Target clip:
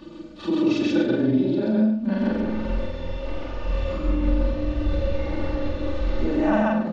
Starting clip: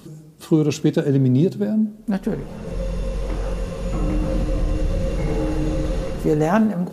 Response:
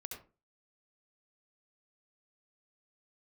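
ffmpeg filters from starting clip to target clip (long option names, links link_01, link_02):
-af "afftfilt=real='re':imag='-im':win_size=4096:overlap=0.75,lowpass=frequency=4300:width=0.5412,lowpass=frequency=4300:width=1.3066,equalizer=frequency=310:width_type=o:width=1.4:gain=-2.5,aecho=1:1:3.4:0.92,bandreject=frequency=169.3:width_type=h:width=4,bandreject=frequency=338.6:width_type=h:width=4,bandreject=frequency=507.9:width_type=h:width=4,bandreject=frequency=677.2:width_type=h:width=4,acompressor=threshold=-27dB:ratio=3,aecho=1:1:84.55|134.1|239.1:0.251|1|0.355,volume=4.5dB"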